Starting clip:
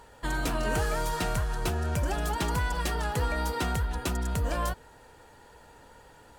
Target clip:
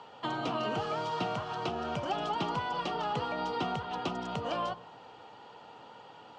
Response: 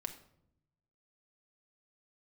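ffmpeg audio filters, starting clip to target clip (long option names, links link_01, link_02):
-filter_complex "[0:a]acrossover=split=330|1000[link_01][link_02][link_03];[link_01]acompressor=threshold=-32dB:ratio=4[link_04];[link_02]acompressor=threshold=-37dB:ratio=4[link_05];[link_03]acompressor=threshold=-41dB:ratio=4[link_06];[link_04][link_05][link_06]amix=inputs=3:normalize=0,highpass=frequency=130:width=0.5412,highpass=frequency=130:width=1.3066,equalizer=frequency=770:width_type=q:width=4:gain=7,equalizer=frequency=1200:width_type=q:width=4:gain=7,equalizer=frequency=1700:width_type=q:width=4:gain=-8,equalizer=frequency=3000:width_type=q:width=4:gain=9,lowpass=frequency=5200:width=0.5412,lowpass=frequency=5200:width=1.3066,asplit=2[link_07][link_08];[1:a]atrim=start_sample=2205,asetrate=22491,aresample=44100[link_09];[link_08][link_09]afir=irnorm=-1:irlink=0,volume=-12.5dB[link_10];[link_07][link_10]amix=inputs=2:normalize=0,volume=-1.5dB"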